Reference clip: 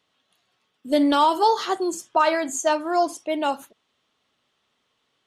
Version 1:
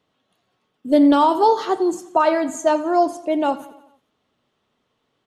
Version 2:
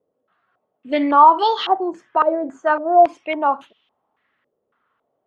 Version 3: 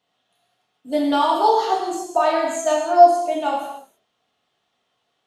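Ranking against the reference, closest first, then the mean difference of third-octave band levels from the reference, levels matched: 1, 3, 2; 4.5, 6.0, 8.0 dB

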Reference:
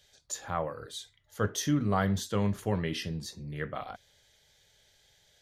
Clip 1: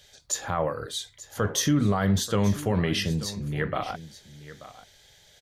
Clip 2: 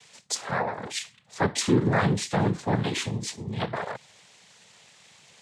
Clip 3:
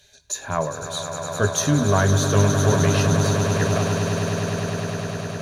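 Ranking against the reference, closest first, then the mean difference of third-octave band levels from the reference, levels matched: 1, 2, 3; 3.5, 6.5, 11.0 dB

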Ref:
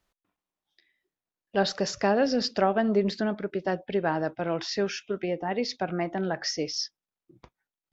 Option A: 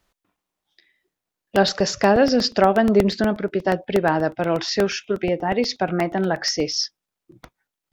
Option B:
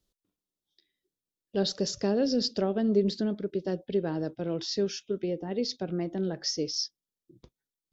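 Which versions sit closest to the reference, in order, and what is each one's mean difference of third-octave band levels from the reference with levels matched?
A, B; 2.0, 3.5 dB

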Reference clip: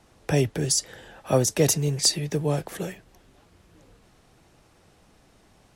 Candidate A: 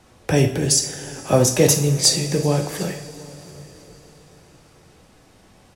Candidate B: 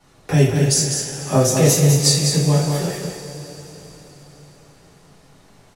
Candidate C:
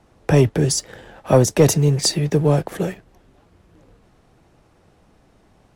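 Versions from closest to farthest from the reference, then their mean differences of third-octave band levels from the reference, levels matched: C, A, B; 3.5, 5.5, 8.0 dB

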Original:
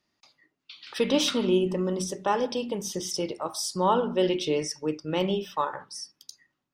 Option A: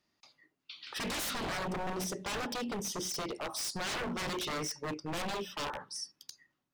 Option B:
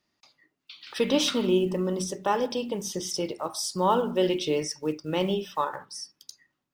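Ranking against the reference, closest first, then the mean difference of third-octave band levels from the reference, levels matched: B, A; 1.0, 11.0 dB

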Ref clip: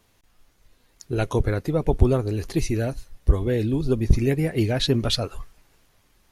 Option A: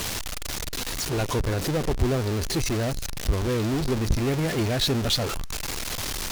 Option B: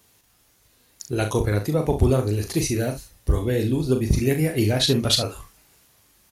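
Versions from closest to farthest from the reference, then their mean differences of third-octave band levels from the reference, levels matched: B, A; 4.5, 10.5 dB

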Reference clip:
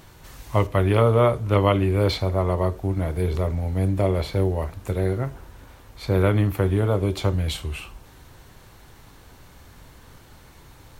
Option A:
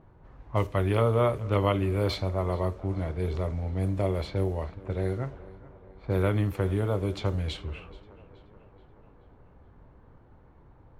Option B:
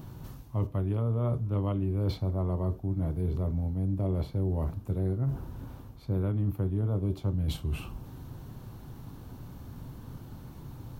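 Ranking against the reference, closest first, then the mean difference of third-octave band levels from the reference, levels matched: A, B; 3.5, 6.5 dB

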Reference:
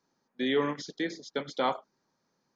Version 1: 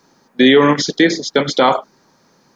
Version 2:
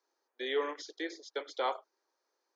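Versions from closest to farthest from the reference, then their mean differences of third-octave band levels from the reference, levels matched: 1, 2; 2.5, 5.0 dB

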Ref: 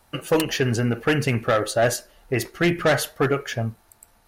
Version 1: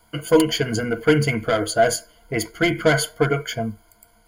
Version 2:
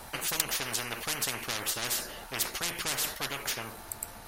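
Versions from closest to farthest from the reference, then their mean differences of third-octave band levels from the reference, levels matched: 1, 2; 3.0, 14.0 dB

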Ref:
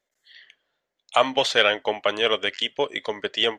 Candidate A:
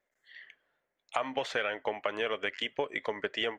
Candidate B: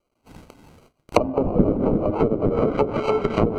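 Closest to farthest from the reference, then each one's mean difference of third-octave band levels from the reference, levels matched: A, B; 3.5, 14.0 dB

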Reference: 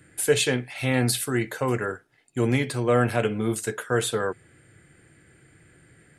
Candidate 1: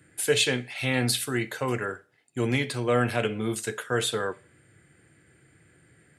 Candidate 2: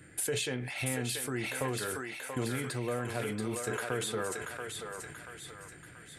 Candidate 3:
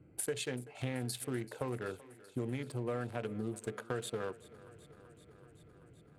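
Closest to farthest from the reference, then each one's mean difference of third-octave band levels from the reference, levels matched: 1, 3, 2; 1.5, 6.0, 10.0 dB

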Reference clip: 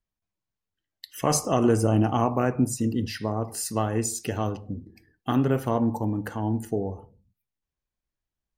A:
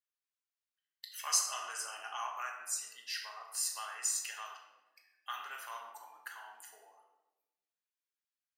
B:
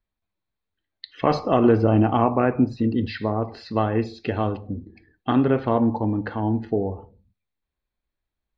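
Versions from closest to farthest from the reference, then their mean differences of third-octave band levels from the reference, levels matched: B, A; 3.5, 18.5 dB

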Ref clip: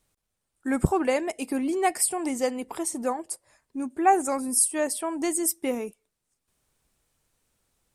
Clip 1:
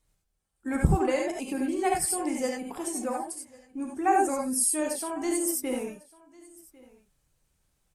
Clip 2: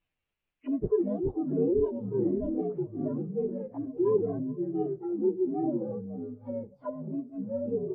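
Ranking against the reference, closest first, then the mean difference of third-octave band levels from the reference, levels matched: 1, 2; 5.5, 17.5 dB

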